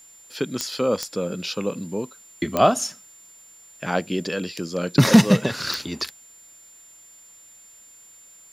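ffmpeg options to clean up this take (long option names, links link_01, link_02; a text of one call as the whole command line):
ffmpeg -i in.wav -af "adeclick=threshold=4,bandreject=frequency=7200:width=30,agate=range=-21dB:threshold=-42dB" out.wav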